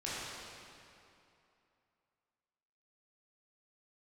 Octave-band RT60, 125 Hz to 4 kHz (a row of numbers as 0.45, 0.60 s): 2.6, 2.7, 2.7, 2.8, 2.4, 2.1 s